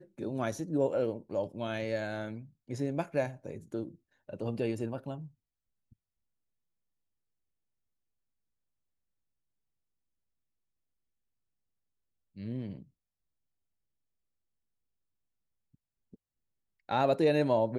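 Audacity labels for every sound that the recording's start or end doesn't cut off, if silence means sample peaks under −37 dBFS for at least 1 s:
12.380000	12.760000	sound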